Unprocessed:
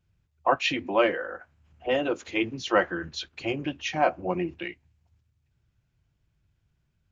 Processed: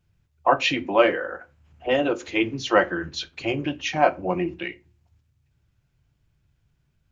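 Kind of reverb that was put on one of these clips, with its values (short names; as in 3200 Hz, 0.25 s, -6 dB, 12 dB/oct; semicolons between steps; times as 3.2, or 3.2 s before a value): shoebox room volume 120 m³, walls furnished, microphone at 0.32 m; gain +3.5 dB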